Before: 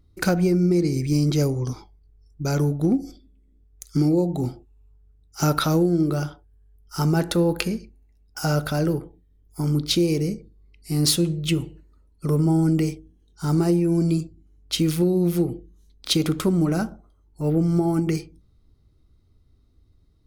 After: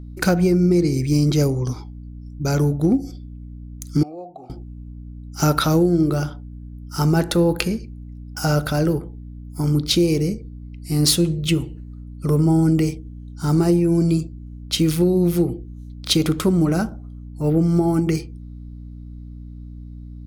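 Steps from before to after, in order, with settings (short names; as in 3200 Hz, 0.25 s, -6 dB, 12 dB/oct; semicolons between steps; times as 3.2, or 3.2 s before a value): hum 60 Hz, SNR 15 dB; 4.03–4.5 vowel filter a; gain +3 dB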